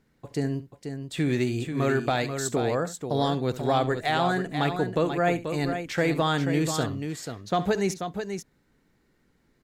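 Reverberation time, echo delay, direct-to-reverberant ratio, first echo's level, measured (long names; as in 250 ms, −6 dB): no reverb audible, 69 ms, no reverb audible, −15.0 dB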